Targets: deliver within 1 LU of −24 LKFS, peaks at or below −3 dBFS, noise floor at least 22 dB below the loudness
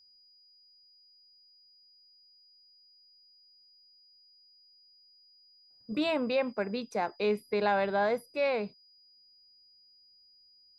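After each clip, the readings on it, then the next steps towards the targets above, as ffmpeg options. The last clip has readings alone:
interfering tone 4,900 Hz; level of the tone −59 dBFS; integrated loudness −30.5 LKFS; sample peak −17.0 dBFS; target loudness −24.0 LKFS
→ -af "bandreject=frequency=4900:width=30"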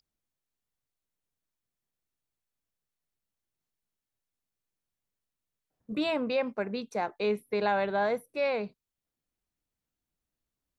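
interfering tone none found; integrated loudness −30.5 LKFS; sample peak −17.0 dBFS; target loudness −24.0 LKFS
→ -af "volume=6.5dB"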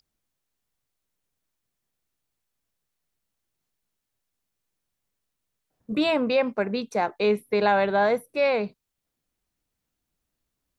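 integrated loudness −24.0 LKFS; sample peak −10.5 dBFS; background noise floor −83 dBFS

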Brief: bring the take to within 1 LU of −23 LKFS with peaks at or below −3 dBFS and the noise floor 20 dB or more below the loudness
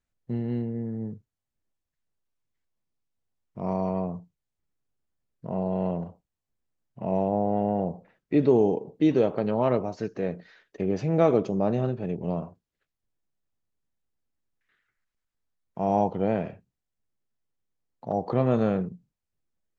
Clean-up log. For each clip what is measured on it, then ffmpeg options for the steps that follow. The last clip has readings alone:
integrated loudness −27.0 LKFS; sample peak −8.5 dBFS; target loudness −23.0 LKFS
→ -af "volume=4dB"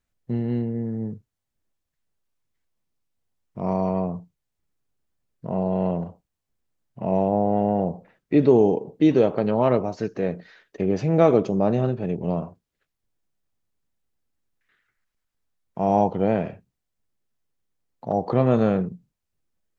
integrated loudness −23.0 LKFS; sample peak −4.5 dBFS; background noise floor −82 dBFS

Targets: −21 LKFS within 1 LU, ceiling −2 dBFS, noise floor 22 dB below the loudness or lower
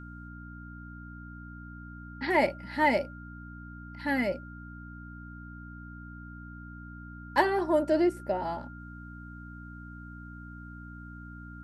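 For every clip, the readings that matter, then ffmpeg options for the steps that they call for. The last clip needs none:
mains hum 60 Hz; hum harmonics up to 300 Hz; level of the hum −43 dBFS; interfering tone 1,400 Hz; level of the tone −48 dBFS; integrated loudness −28.5 LKFS; sample peak −10.5 dBFS; target loudness −21.0 LKFS
→ -af "bandreject=frequency=60:width_type=h:width=4,bandreject=frequency=120:width_type=h:width=4,bandreject=frequency=180:width_type=h:width=4,bandreject=frequency=240:width_type=h:width=4,bandreject=frequency=300:width_type=h:width=4"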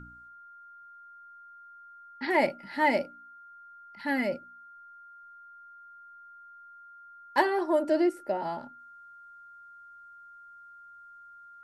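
mains hum none found; interfering tone 1,400 Hz; level of the tone −48 dBFS
→ -af "bandreject=frequency=1400:width=30"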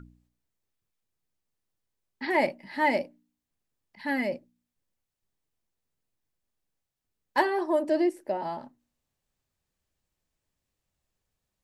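interfering tone none found; integrated loudness −28.5 LKFS; sample peak −10.5 dBFS; target loudness −21.0 LKFS
→ -af "volume=7.5dB"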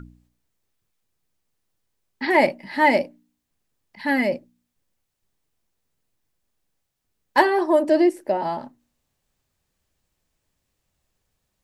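integrated loudness −21.0 LKFS; sample peak −3.0 dBFS; background noise floor −78 dBFS

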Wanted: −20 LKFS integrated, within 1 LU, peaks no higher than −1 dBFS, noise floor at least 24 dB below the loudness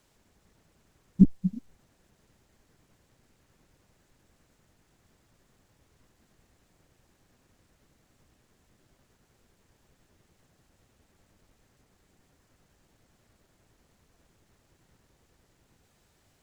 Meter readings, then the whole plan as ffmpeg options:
integrated loudness −26.0 LKFS; sample peak −5.0 dBFS; target loudness −20.0 LKFS
→ -af "volume=6dB,alimiter=limit=-1dB:level=0:latency=1"

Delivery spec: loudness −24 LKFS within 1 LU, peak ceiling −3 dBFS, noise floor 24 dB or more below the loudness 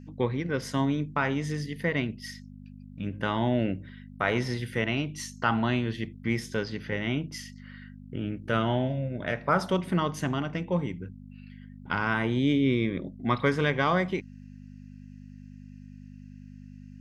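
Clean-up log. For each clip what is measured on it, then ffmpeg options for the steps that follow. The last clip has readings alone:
mains hum 50 Hz; hum harmonics up to 250 Hz; level of the hum −43 dBFS; integrated loudness −29.0 LKFS; sample peak −10.0 dBFS; target loudness −24.0 LKFS
→ -af "bandreject=frequency=50:width_type=h:width=4,bandreject=frequency=100:width_type=h:width=4,bandreject=frequency=150:width_type=h:width=4,bandreject=frequency=200:width_type=h:width=4,bandreject=frequency=250:width_type=h:width=4"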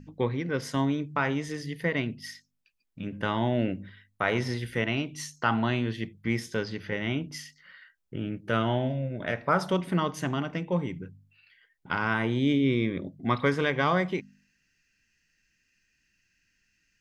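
mains hum none found; integrated loudness −29.0 LKFS; sample peak −10.0 dBFS; target loudness −24.0 LKFS
→ -af "volume=5dB"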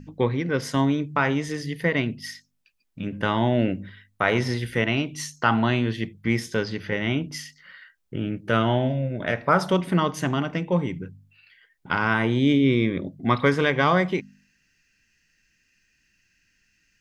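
integrated loudness −24.0 LKFS; sample peak −5.0 dBFS; background noise floor −69 dBFS

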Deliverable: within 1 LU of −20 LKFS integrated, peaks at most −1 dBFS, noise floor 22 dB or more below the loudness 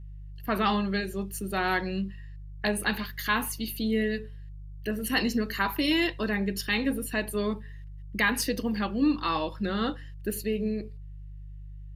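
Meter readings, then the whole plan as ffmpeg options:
mains hum 50 Hz; hum harmonics up to 150 Hz; level of the hum −39 dBFS; integrated loudness −29.0 LKFS; sample peak −12.0 dBFS; target loudness −20.0 LKFS
→ -af "bandreject=frequency=50:width_type=h:width=4,bandreject=frequency=100:width_type=h:width=4,bandreject=frequency=150:width_type=h:width=4"
-af "volume=9dB"

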